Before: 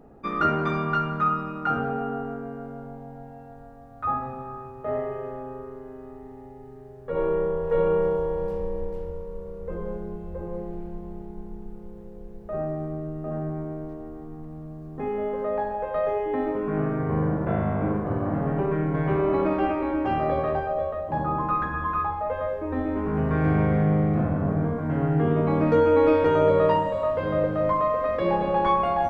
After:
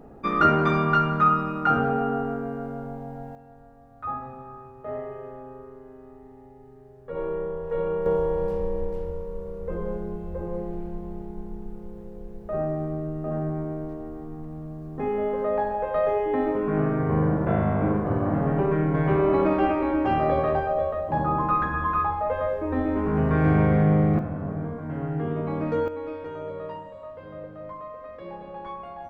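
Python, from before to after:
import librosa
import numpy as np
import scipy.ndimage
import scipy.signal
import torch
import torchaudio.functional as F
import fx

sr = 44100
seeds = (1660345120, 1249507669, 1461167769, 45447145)

y = fx.gain(x, sr, db=fx.steps((0.0, 4.0), (3.35, -5.0), (8.06, 2.0), (24.19, -6.0), (25.88, -15.5)))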